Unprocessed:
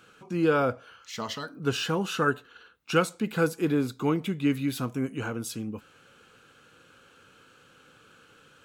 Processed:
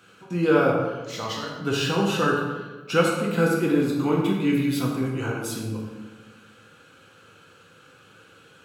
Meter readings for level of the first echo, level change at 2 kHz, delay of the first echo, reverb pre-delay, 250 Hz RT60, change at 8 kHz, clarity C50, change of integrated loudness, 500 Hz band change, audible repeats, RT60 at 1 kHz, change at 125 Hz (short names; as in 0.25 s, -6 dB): none, +4.0 dB, none, 3 ms, 1.6 s, +3.5 dB, 2.5 dB, +4.5 dB, +5.0 dB, none, 1.2 s, +5.0 dB